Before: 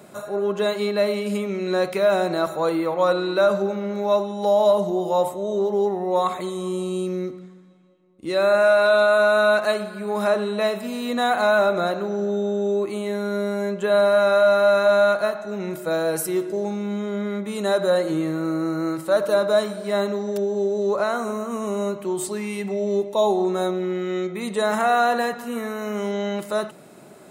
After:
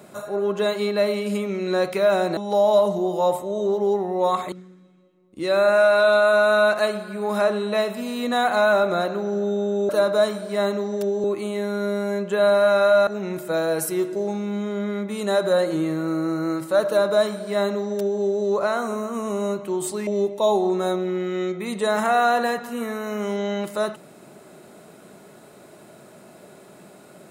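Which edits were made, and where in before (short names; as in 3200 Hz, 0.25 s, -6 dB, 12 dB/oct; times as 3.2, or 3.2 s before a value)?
2.37–4.29 cut
6.44–7.38 cut
14.58–15.44 cut
19.24–20.59 copy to 12.75
22.44–22.82 cut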